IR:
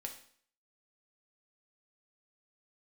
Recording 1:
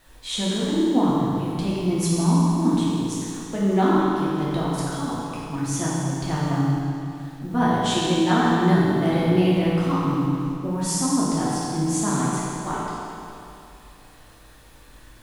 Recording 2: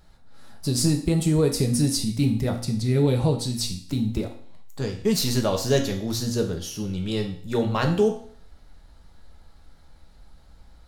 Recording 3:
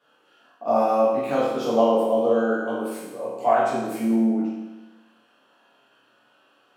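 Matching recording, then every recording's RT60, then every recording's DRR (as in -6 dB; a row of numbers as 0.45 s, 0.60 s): 2; 2.7 s, 0.55 s, 1.1 s; -8.0 dB, 2.0 dB, -10.5 dB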